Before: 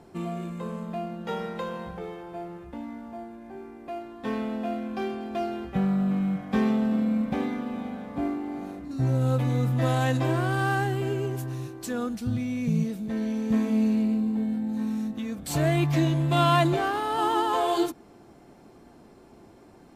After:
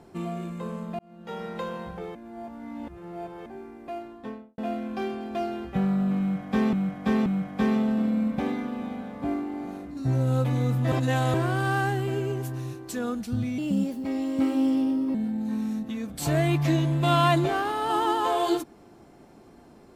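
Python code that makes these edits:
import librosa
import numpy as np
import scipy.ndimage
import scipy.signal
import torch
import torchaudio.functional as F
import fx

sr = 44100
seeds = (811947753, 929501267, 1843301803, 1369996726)

y = fx.studio_fade_out(x, sr, start_s=3.99, length_s=0.59)
y = fx.edit(y, sr, fx.fade_in_span(start_s=0.99, length_s=0.59),
    fx.reverse_span(start_s=2.15, length_s=1.31),
    fx.repeat(start_s=6.2, length_s=0.53, count=3),
    fx.reverse_span(start_s=9.86, length_s=0.42),
    fx.speed_span(start_s=12.52, length_s=1.91, speed=1.22), tone=tone)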